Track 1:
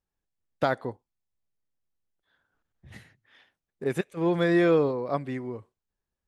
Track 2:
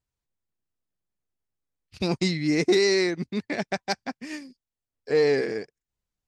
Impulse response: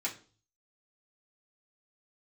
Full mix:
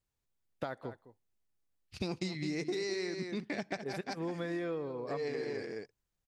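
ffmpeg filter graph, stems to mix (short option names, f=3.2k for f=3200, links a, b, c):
-filter_complex "[0:a]volume=-7dB,asplit=3[a][b][c];[b]volume=-18dB[d];[1:a]volume=-1.5dB,asplit=3[e][f][g];[f]volume=-20.5dB[h];[g]volume=-9dB[i];[c]apad=whole_len=276551[j];[e][j]sidechaincompress=threshold=-44dB:ratio=8:attack=6.9:release=123[k];[2:a]atrim=start_sample=2205[l];[h][l]afir=irnorm=-1:irlink=0[m];[d][i]amix=inputs=2:normalize=0,aecho=0:1:208:1[n];[a][k][m][n]amix=inputs=4:normalize=0,acompressor=threshold=-34dB:ratio=6"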